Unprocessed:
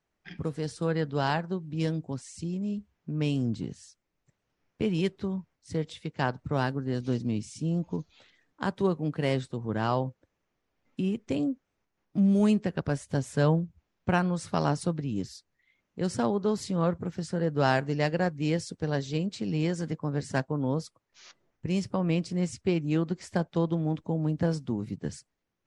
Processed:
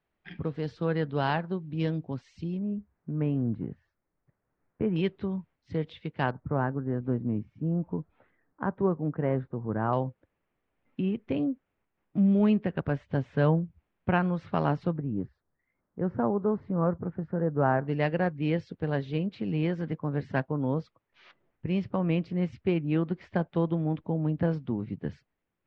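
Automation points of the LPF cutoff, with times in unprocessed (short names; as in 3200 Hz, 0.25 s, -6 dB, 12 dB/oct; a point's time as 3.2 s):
LPF 24 dB/oct
3700 Hz
from 2.59 s 1800 Hz
from 4.96 s 3400 Hz
from 6.31 s 1600 Hz
from 9.93 s 3000 Hz
from 14.96 s 1500 Hz
from 17.88 s 3100 Hz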